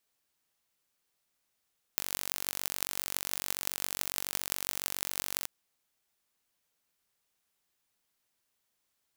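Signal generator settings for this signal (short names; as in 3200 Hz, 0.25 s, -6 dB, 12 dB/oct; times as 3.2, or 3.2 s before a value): pulse train 47.2/s, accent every 8, -2 dBFS 3.48 s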